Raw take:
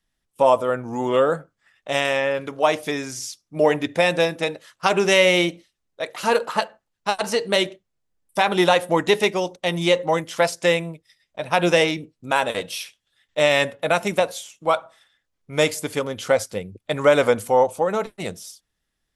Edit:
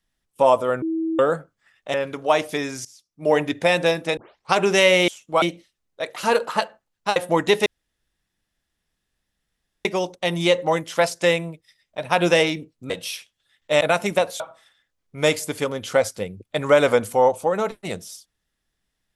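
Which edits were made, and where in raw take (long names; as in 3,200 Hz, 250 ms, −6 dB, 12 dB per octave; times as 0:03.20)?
0:00.82–0:01.19: beep over 324 Hz −21 dBFS
0:01.94–0:02.28: remove
0:03.19–0:03.69: fade in quadratic, from −18 dB
0:04.51: tape start 0.36 s
0:07.16–0:08.76: remove
0:09.26: splice in room tone 2.19 s
0:12.31–0:12.57: remove
0:13.48–0:13.82: remove
0:14.41–0:14.75: move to 0:05.42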